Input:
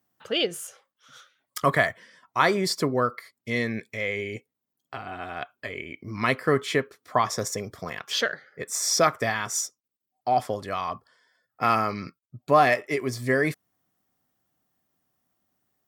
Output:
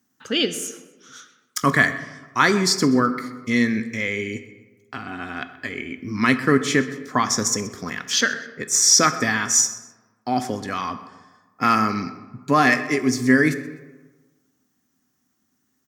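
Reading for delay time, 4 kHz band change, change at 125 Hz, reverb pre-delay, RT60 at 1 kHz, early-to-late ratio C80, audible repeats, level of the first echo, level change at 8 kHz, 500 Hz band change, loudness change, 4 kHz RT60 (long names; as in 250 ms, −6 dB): 127 ms, +6.5 dB, +4.5 dB, 14 ms, 1.3 s, 13.5 dB, 2, −19.0 dB, +11.0 dB, +0.5 dB, +5.5 dB, 0.70 s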